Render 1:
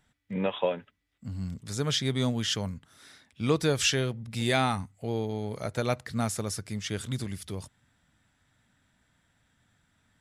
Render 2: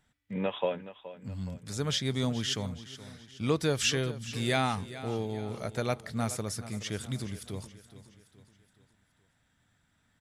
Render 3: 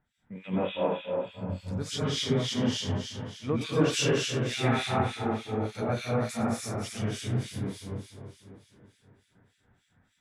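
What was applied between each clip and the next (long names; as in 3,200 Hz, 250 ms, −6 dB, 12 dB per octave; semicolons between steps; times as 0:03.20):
repeating echo 422 ms, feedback 48%, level −15 dB; level −2.5 dB
dense smooth reverb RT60 2.4 s, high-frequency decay 0.85×, pre-delay 105 ms, DRR −9.5 dB; two-band tremolo in antiphase 3.4 Hz, depth 100%, crossover 2,000 Hz; high-shelf EQ 8,700 Hz −8 dB; level −2 dB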